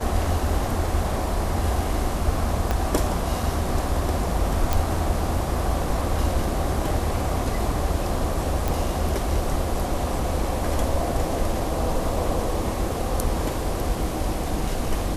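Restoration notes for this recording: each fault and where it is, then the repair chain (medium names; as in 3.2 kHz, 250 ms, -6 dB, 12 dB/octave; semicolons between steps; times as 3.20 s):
2.71 s: pop -10 dBFS
4.73 s: pop
8.68 s: pop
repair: de-click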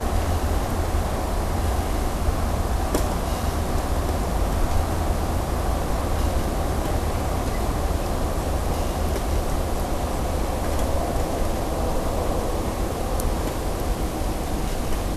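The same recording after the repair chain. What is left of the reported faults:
2.71 s: pop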